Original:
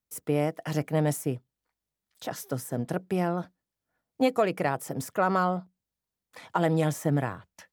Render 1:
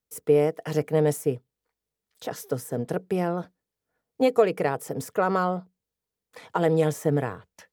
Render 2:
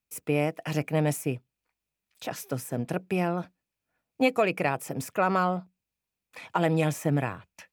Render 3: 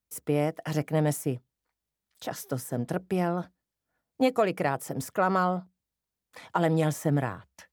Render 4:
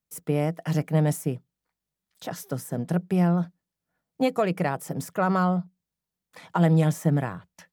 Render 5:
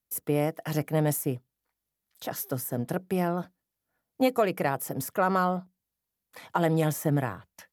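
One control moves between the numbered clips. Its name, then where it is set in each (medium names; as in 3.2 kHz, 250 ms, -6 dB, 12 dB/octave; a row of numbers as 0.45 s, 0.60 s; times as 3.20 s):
peaking EQ, frequency: 450 Hz, 2.5 kHz, 65 Hz, 170 Hz, 12 kHz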